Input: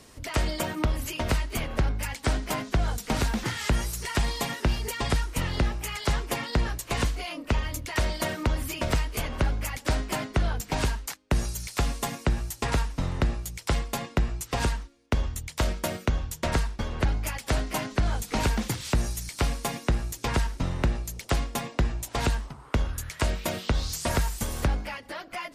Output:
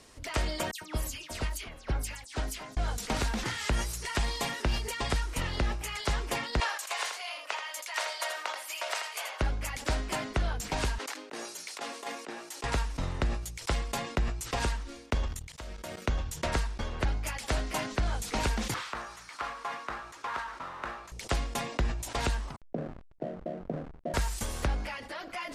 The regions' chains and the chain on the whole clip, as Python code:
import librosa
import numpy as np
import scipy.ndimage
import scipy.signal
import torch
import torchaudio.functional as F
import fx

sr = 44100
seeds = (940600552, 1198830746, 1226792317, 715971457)

y = fx.chain(x, sr, fx.high_shelf(hz=3600.0, db=9.5),
    fx.dispersion(late='lows', ms=106.0, hz=2700.0),
    fx.upward_expand(threshold_db=-42.0, expansion=2.5), at=(0.71, 2.77))
y = fx.chain(y, sr, fx.highpass(hz=660.0, slope=24),
    fx.echo_single(ms=82, db=-7.0), at=(6.6, 9.41))
y = fx.chain(y, sr, fx.highpass(hz=290.0, slope=24),
    fx.high_shelf(hz=4900.0, db=-8.0),
    fx.over_compress(threshold_db=-33.0, ratio=-0.5), at=(10.98, 12.64))
y = fx.chain(y, sr, fx.law_mismatch(coded='A'),
    fx.level_steps(step_db=18), at=(15.28, 16.02))
y = fx.chain(y, sr, fx.bandpass_q(hz=1200.0, q=2.5),
    fx.power_curve(exponent=0.7), at=(18.74, 21.12))
y = fx.chain(y, sr, fx.cheby1_bandpass(low_hz=140.0, high_hz=730.0, order=5),
    fx.backlash(play_db=-40.0), at=(22.56, 24.14))
y = scipy.signal.sosfilt(scipy.signal.butter(2, 11000.0, 'lowpass', fs=sr, output='sos'), y)
y = fx.peak_eq(y, sr, hz=140.0, db=-5.0, octaves=2.3)
y = fx.sustainer(y, sr, db_per_s=68.0)
y = y * 10.0 ** (-2.5 / 20.0)